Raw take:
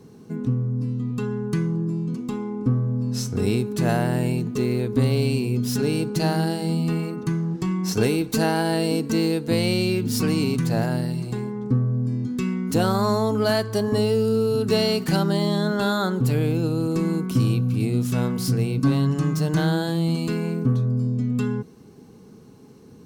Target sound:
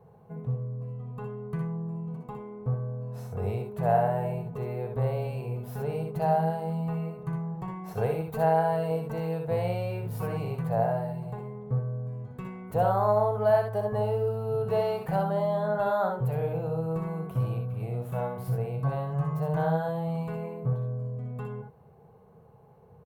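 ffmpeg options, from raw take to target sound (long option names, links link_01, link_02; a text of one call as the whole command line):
ffmpeg -i in.wav -filter_complex "[0:a]firequalizer=gain_entry='entry(150,0);entry(270,-22);entry(480,3);entry(700,9);entry(1300,-3);entry(5200,-26);entry(13000,-8)':delay=0.05:min_phase=1,asplit=2[link_01][link_02];[link_02]aecho=0:1:62|75:0.531|0.355[link_03];[link_01][link_03]amix=inputs=2:normalize=0,volume=-6dB" out.wav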